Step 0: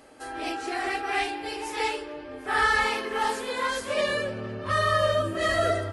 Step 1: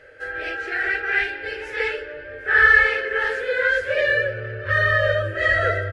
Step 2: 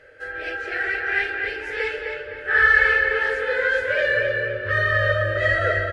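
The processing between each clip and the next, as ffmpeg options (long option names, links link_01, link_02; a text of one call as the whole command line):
ffmpeg -i in.wav -af "firequalizer=gain_entry='entry(130,0);entry(200,-26);entry(500,5);entry(730,-14);entry(1100,-18);entry(1500,9);entry(2300,-1);entry(3800,-10);entry(9200,-22)':delay=0.05:min_phase=1,volume=6dB" out.wav
ffmpeg -i in.wav -filter_complex "[0:a]asplit=2[link_01][link_02];[link_02]adelay=258,lowpass=frequency=3900:poles=1,volume=-4dB,asplit=2[link_03][link_04];[link_04]adelay=258,lowpass=frequency=3900:poles=1,volume=0.44,asplit=2[link_05][link_06];[link_06]adelay=258,lowpass=frequency=3900:poles=1,volume=0.44,asplit=2[link_07][link_08];[link_08]adelay=258,lowpass=frequency=3900:poles=1,volume=0.44,asplit=2[link_09][link_10];[link_10]adelay=258,lowpass=frequency=3900:poles=1,volume=0.44,asplit=2[link_11][link_12];[link_12]adelay=258,lowpass=frequency=3900:poles=1,volume=0.44[link_13];[link_01][link_03][link_05][link_07][link_09][link_11][link_13]amix=inputs=7:normalize=0,volume=-2dB" out.wav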